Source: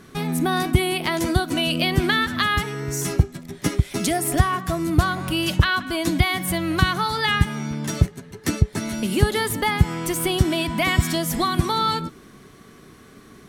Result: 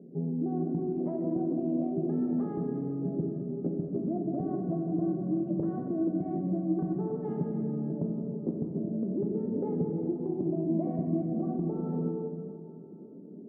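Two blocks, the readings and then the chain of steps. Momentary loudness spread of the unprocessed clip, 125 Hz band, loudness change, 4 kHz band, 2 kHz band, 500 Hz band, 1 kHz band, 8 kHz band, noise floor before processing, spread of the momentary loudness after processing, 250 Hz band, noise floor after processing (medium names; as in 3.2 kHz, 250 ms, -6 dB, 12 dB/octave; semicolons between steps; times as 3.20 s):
5 LU, -12.0 dB, -9.5 dB, under -40 dB, under -40 dB, -6.0 dB, -20.0 dB, under -40 dB, -48 dBFS, 4 LU, -4.0 dB, -46 dBFS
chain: local Wiener filter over 41 samples; Chebyshev band-pass 170–610 Hz, order 3; compression, threshold -30 dBFS, peak gain reduction 11 dB; plate-style reverb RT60 2.7 s, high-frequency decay 0.85×, DRR -0.5 dB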